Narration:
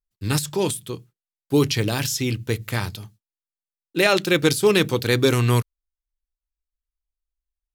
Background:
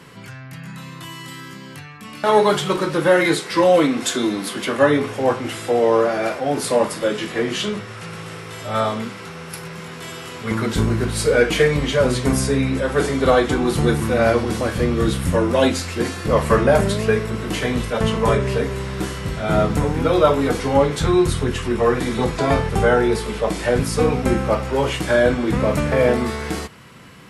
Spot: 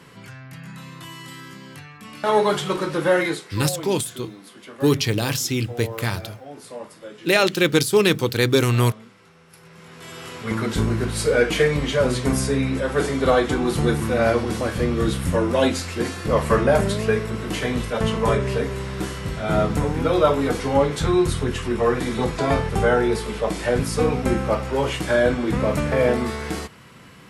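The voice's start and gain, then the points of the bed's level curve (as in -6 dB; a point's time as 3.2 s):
3.30 s, +0.5 dB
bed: 3.19 s -3.5 dB
3.66 s -18 dB
9.48 s -18 dB
10.25 s -2.5 dB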